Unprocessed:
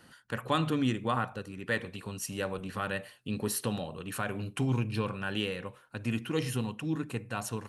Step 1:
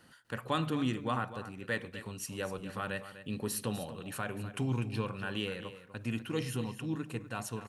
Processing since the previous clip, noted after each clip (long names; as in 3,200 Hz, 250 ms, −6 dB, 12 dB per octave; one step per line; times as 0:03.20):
surface crackle 280 per second −63 dBFS
single-tap delay 248 ms −13 dB
level −3.5 dB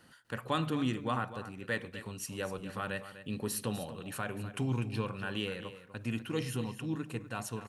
no processing that can be heard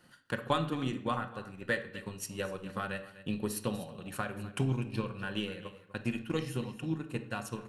transient designer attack +8 dB, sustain −5 dB
convolution reverb RT60 0.65 s, pre-delay 6 ms, DRR 7 dB
level −3 dB